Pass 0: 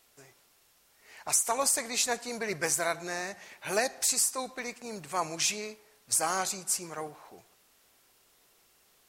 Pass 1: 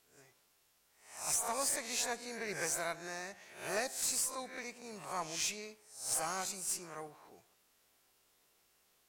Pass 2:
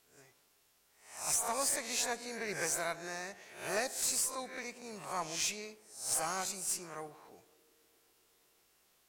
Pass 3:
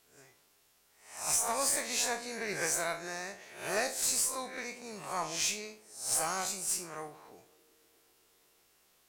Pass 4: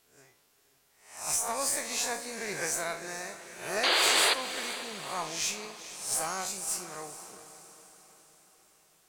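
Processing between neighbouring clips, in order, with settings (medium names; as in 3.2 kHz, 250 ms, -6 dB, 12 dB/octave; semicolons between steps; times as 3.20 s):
reverse spectral sustain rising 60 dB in 0.50 s; valve stage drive 16 dB, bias 0.35; trim -8 dB
band-passed feedback delay 126 ms, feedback 84%, band-pass 370 Hz, level -21 dB; trim +1.5 dB
spectral sustain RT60 0.33 s; trim +1.5 dB
painted sound noise, 3.83–4.34 s, 320–4900 Hz -25 dBFS; echo that smears into a reverb 464 ms, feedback 52%, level -13 dB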